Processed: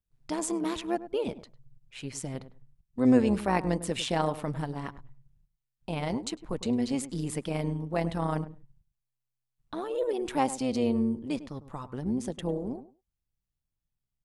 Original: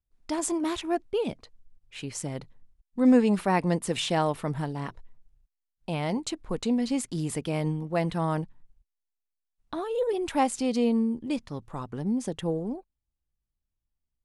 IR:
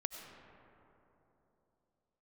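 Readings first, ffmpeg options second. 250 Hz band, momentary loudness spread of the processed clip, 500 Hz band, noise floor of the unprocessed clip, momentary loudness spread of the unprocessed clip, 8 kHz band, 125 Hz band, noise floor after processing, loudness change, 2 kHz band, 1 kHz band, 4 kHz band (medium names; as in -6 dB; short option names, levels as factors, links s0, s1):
-2.5 dB, 14 LU, -2.0 dB, -84 dBFS, 13 LU, -2.5 dB, -2.0 dB, -85 dBFS, -2.5 dB, -2.5 dB, -2.5 dB, -2.5 dB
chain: -filter_complex "[0:a]tremolo=f=130:d=0.571,asplit=2[s0][s1];[s1]adelay=102,lowpass=f=1100:p=1,volume=0.224,asplit=2[s2][s3];[s3]adelay=102,lowpass=f=1100:p=1,volume=0.16[s4];[s0][s2][s4]amix=inputs=3:normalize=0"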